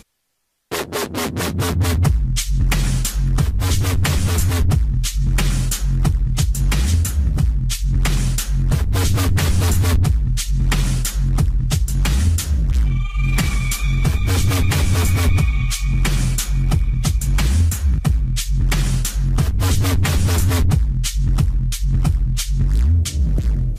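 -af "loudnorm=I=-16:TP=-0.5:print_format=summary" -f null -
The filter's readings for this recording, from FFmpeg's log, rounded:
Input Integrated:    -19.2 LUFS
Input True Peak:      -6.0 dBTP
Input LRA:             1.1 LU
Input Threshold:     -29.3 LUFS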